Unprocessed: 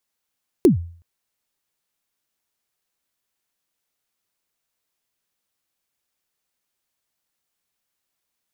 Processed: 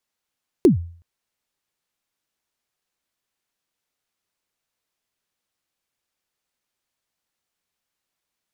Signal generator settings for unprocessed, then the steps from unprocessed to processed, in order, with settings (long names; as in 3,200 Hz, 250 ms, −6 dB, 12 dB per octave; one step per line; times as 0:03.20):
synth kick length 0.37 s, from 410 Hz, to 85 Hz, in 123 ms, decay 0.48 s, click on, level −6 dB
high-shelf EQ 9,500 Hz −8 dB